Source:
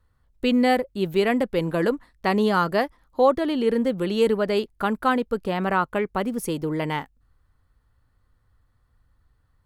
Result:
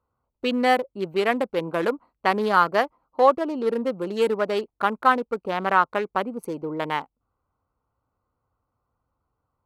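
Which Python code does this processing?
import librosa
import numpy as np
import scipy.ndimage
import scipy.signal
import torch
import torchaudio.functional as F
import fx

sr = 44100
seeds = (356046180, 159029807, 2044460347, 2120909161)

y = fx.wiener(x, sr, points=25)
y = fx.highpass(y, sr, hz=400.0, slope=6)
y = fx.peak_eq(y, sr, hz=1200.0, db=6.0, octaves=1.8)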